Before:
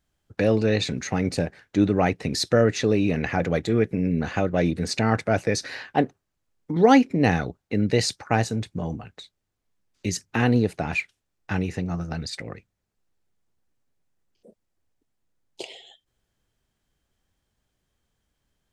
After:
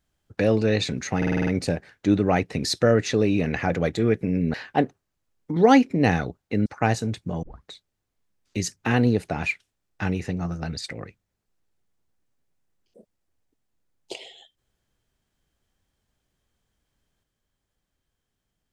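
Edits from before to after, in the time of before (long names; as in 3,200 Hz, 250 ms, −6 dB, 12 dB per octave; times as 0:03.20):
0:01.17: stutter 0.05 s, 7 plays
0:04.24–0:05.74: remove
0:07.86–0:08.15: remove
0:08.92: tape start 0.25 s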